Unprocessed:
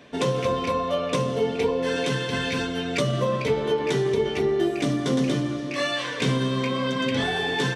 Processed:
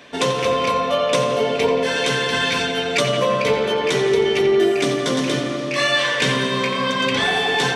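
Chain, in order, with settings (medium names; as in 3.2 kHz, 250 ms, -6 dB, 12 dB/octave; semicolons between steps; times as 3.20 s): bass shelf 480 Hz -10.5 dB; filtered feedback delay 87 ms, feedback 79%, low-pass 3.9 kHz, level -7 dB; trim +8.5 dB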